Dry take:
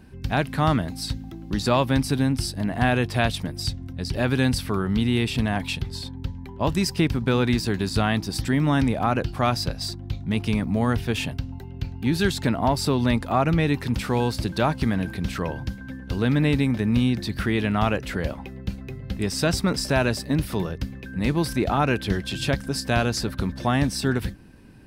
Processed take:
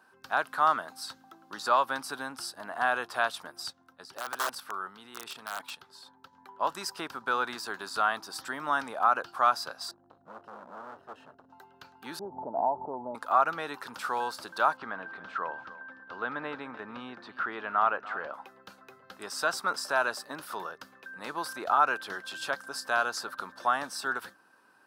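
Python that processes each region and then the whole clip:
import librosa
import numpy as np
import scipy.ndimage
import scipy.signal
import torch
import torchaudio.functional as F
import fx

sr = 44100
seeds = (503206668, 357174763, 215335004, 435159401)

y = fx.chain(x, sr, fx.highpass(hz=50.0, slope=24),
    fx.level_steps(step_db=10),
    fx.overflow_wrap(gain_db=20.0), at=(3.7, 6.33))
y = fx.chain(y, sr, fx.moving_average(points=38),
    fx.clip_hard(threshold_db=-29.5), at=(9.91, 11.5))
y = fx.chain(y, sr, fx.cheby1_lowpass(hz=900.0, order=6),
    fx.pre_swell(db_per_s=24.0), at=(12.19, 13.15))
y = fx.chain(y, sr, fx.lowpass(hz=2500.0, slope=12),
    fx.echo_single(ms=294, db=-16.5), at=(14.77, 18.34))
y = scipy.signal.sosfilt(scipy.signal.butter(2, 940.0, 'highpass', fs=sr, output='sos'), y)
y = fx.high_shelf_res(y, sr, hz=1700.0, db=-7.0, q=3.0)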